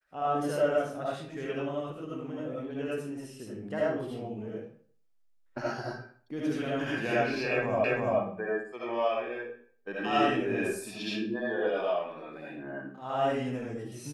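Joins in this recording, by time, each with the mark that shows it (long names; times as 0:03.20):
0:07.84: the same again, the last 0.34 s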